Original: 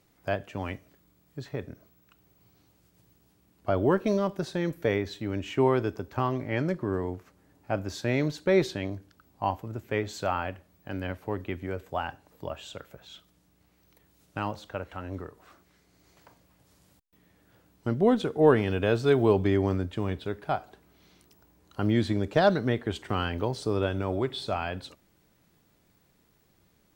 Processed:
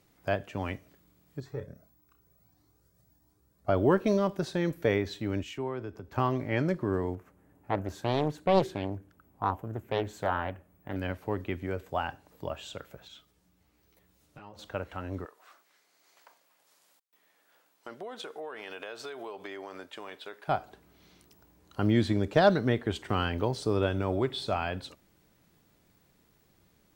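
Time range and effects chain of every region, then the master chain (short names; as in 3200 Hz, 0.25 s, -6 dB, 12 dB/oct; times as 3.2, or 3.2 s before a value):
1.4–3.69 bell 2800 Hz -11 dB 0.8 oct + flutter echo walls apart 5.2 m, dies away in 0.22 s + cascading flanger rising 1.6 Hz
5.43–6.12 compressor 2:1, threshold -39 dBFS + three-band expander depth 70%
7.15–10.96 bell 4600 Hz -13 dB 1.4 oct + Doppler distortion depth 0.77 ms
13.08–14.59 compressor 5:1, threshold -42 dBFS + ensemble effect
15.25–20.48 HPF 670 Hz + compressor 10:1, threshold -36 dBFS
whole clip: dry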